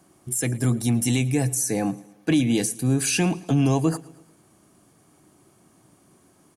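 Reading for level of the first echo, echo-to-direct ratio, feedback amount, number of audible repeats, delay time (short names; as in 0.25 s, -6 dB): -22.0 dB, -20.5 dB, 52%, 3, 0.111 s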